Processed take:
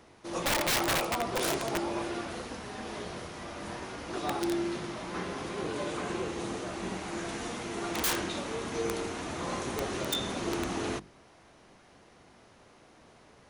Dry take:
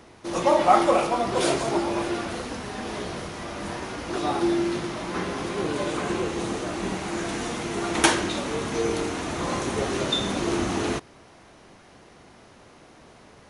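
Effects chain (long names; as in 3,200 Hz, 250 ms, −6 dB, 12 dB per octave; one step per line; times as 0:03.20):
mains-hum notches 50/100/150/200/250/300/350/400 Hz
wrap-around overflow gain 15.5 dB
level −6.5 dB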